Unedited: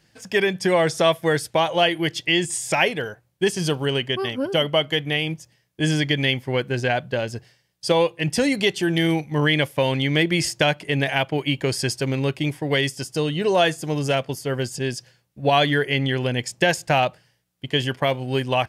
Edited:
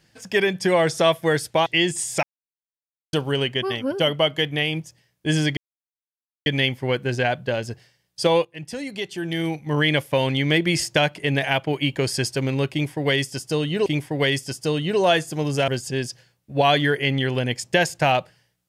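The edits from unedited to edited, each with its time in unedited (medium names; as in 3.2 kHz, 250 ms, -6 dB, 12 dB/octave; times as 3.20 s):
1.66–2.20 s: delete
2.77–3.67 s: mute
6.11 s: insert silence 0.89 s
8.10–9.56 s: fade in quadratic, from -12.5 dB
12.37–13.51 s: loop, 2 plays
14.19–14.56 s: delete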